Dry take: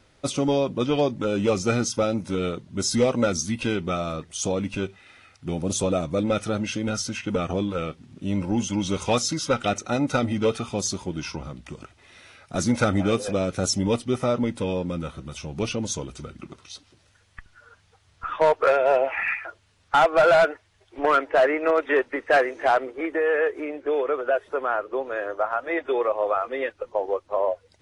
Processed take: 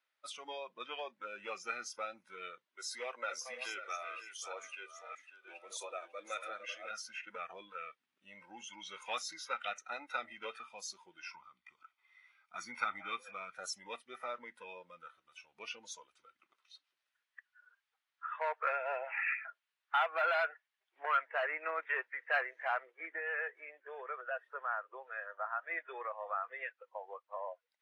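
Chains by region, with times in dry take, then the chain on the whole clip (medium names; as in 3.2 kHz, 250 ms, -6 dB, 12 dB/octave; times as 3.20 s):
2.66–6.91 s: chunks repeated in reverse 623 ms, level -7 dB + high-pass 290 Hz 24 dB/octave + delay 546 ms -9 dB
11.31–13.55 s: treble shelf 6.8 kHz -7.5 dB + comb 0.9 ms, depth 55%
whole clip: spectral noise reduction 12 dB; high-pass 1.4 kHz 12 dB/octave; peaking EQ 7.1 kHz -13 dB 1.8 oct; trim -5 dB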